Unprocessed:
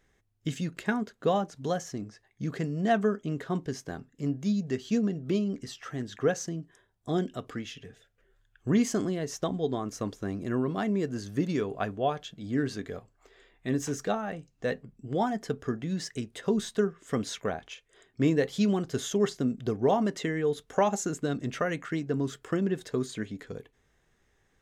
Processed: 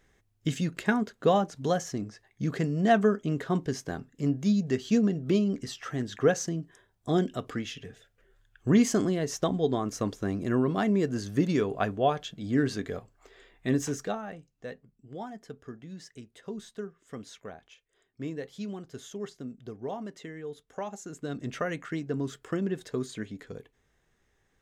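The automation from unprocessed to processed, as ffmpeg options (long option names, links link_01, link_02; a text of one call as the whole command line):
ffmpeg -i in.wav -af "volume=12.5dB,afade=type=out:start_time=13.69:duration=0.43:silence=0.473151,afade=type=out:start_time=14.12:duration=0.64:silence=0.398107,afade=type=in:start_time=21.05:duration=0.44:silence=0.334965" out.wav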